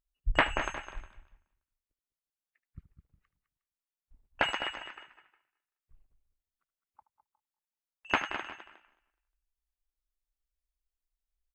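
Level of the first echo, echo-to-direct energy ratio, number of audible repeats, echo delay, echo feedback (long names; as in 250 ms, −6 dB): −16.5 dB, −9.0 dB, 4, 76 ms, repeats not evenly spaced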